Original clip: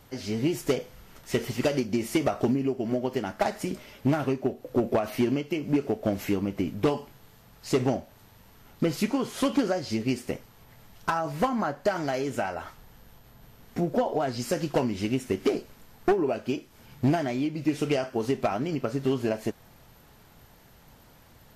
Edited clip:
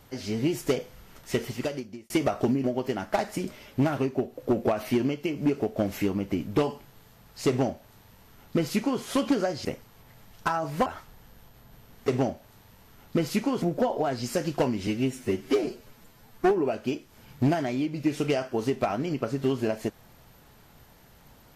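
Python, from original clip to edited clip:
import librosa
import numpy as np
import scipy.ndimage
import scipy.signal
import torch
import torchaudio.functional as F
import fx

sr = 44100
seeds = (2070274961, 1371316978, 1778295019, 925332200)

y = fx.edit(x, sr, fx.fade_out_span(start_s=1.31, length_s=0.79),
    fx.cut(start_s=2.64, length_s=0.27),
    fx.duplicate(start_s=7.75, length_s=1.54, to_s=13.78),
    fx.cut(start_s=9.92, length_s=0.35),
    fx.cut(start_s=11.48, length_s=1.08),
    fx.stretch_span(start_s=15.03, length_s=1.09, factor=1.5), tone=tone)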